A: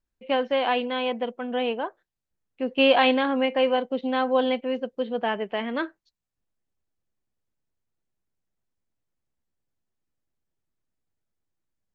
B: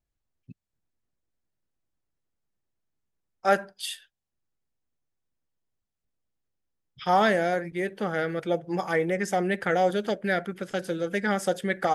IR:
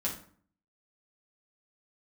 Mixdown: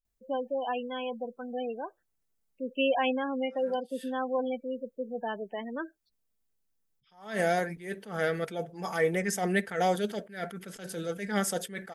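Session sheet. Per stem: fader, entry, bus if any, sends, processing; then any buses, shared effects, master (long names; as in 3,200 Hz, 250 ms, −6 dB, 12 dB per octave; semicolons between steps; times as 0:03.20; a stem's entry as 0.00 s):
−7.5 dB, 0.00 s, no send, gate on every frequency bin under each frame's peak −15 dB strong
−1.5 dB, 0.05 s, no send, high-shelf EQ 7,100 Hz +11 dB; comb filter 4.5 ms, depth 37%; level that may rise only so fast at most 130 dB per second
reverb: not used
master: no processing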